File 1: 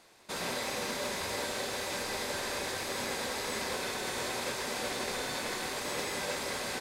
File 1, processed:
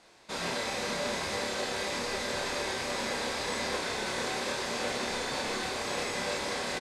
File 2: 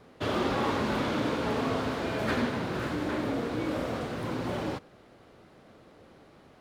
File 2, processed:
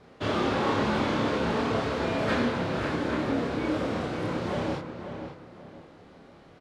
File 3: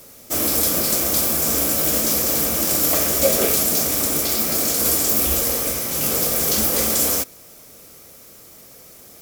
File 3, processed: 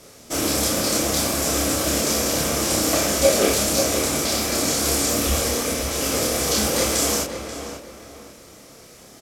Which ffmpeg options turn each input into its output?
-filter_complex "[0:a]lowpass=7900,asplit=2[s0][s1];[s1]adelay=29,volume=0.794[s2];[s0][s2]amix=inputs=2:normalize=0,asplit=2[s3][s4];[s4]adelay=535,lowpass=f=2700:p=1,volume=0.398,asplit=2[s5][s6];[s6]adelay=535,lowpass=f=2700:p=1,volume=0.33,asplit=2[s7][s8];[s8]adelay=535,lowpass=f=2700:p=1,volume=0.33,asplit=2[s9][s10];[s10]adelay=535,lowpass=f=2700:p=1,volume=0.33[s11];[s5][s7][s9][s11]amix=inputs=4:normalize=0[s12];[s3][s12]amix=inputs=2:normalize=0"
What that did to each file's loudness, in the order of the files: +2.0 LU, +2.5 LU, -3.0 LU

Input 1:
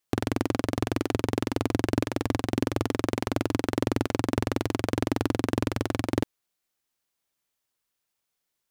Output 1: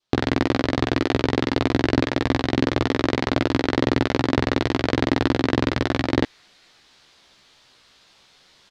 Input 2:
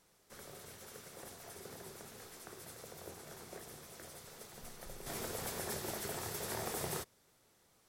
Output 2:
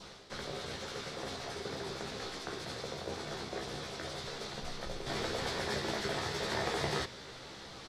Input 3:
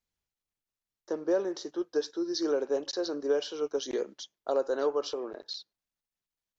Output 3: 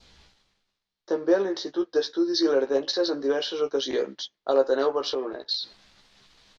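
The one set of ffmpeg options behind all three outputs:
-filter_complex "[0:a]adynamicequalizer=threshold=0.00224:dfrequency=1900:dqfactor=3:tfrequency=1900:tqfactor=3:attack=5:release=100:ratio=0.375:range=2.5:mode=boostabove:tftype=bell,asplit=2[s0][s1];[s1]adelay=15,volume=0.562[s2];[s0][s2]amix=inputs=2:normalize=0,areverse,acompressor=mode=upward:threshold=0.0141:ratio=2.5,areverse,lowpass=f=4000:t=q:w=1.9,equalizer=f=2700:w=1.5:g=-3,volume=1.78"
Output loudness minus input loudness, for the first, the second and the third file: +6.5 LU, +6.0 LU, +6.0 LU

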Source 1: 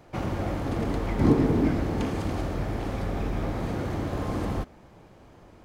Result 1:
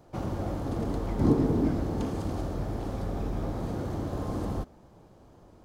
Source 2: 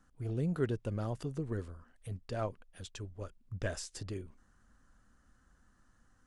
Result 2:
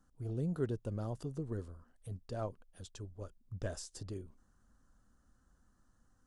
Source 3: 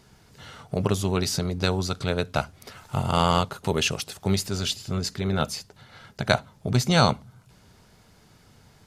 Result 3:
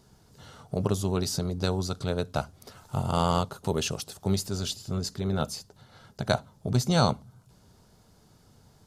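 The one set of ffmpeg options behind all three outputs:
-af "equalizer=f=2200:w=1.2:g=-9.5,volume=0.75"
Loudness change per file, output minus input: -3.0 LU, -2.5 LU, -3.5 LU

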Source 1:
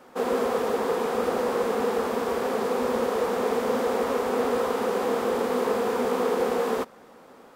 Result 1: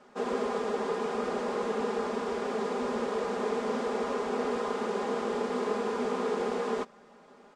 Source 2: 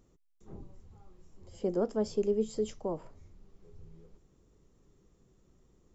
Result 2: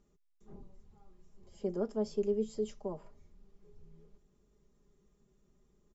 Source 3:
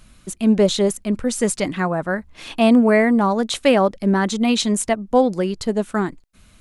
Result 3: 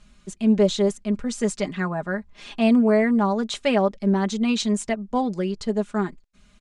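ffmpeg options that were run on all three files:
-af "lowpass=f=8100:w=0.5412,lowpass=f=8100:w=1.3066,aecho=1:1:4.9:0.61,volume=0.473"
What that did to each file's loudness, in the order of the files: -5.5 LU, -3.0 LU, -4.0 LU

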